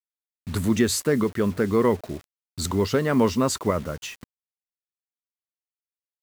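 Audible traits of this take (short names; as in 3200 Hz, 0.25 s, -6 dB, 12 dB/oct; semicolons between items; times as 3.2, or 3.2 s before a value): tremolo saw up 0.81 Hz, depth 35%; a quantiser's noise floor 8-bit, dither none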